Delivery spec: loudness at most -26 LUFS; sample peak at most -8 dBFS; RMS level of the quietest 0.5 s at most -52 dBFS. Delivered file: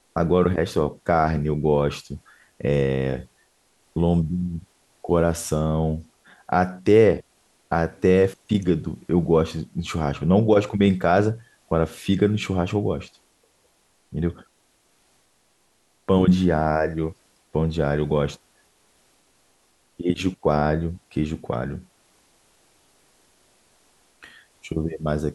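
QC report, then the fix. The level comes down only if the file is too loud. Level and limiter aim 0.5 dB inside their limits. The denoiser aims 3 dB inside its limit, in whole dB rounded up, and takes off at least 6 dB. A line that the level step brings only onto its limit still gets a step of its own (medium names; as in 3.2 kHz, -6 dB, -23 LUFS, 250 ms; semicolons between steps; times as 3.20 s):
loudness -22.5 LUFS: fail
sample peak -4.0 dBFS: fail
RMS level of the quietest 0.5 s -64 dBFS: pass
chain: trim -4 dB; peak limiter -8.5 dBFS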